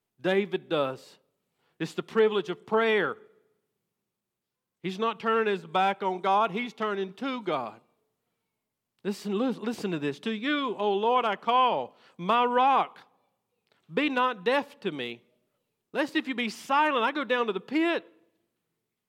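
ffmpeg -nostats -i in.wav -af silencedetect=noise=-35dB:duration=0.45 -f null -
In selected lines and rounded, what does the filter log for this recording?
silence_start: 0.95
silence_end: 1.80 | silence_duration: 0.85
silence_start: 3.13
silence_end: 4.84 | silence_duration: 1.71
silence_start: 7.70
silence_end: 9.05 | silence_duration: 1.35
silence_start: 12.86
silence_end: 13.96 | silence_duration: 1.10
silence_start: 15.14
silence_end: 15.94 | silence_duration: 0.80
silence_start: 17.99
silence_end: 19.08 | silence_duration: 1.09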